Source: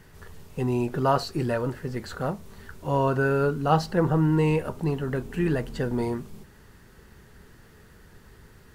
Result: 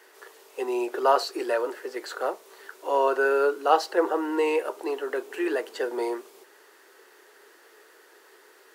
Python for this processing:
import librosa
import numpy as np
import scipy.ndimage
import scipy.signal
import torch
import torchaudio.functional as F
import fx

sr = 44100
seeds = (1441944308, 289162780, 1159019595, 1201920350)

y = scipy.signal.sosfilt(scipy.signal.butter(8, 340.0, 'highpass', fs=sr, output='sos'), x)
y = F.gain(torch.from_numpy(y), 2.5).numpy()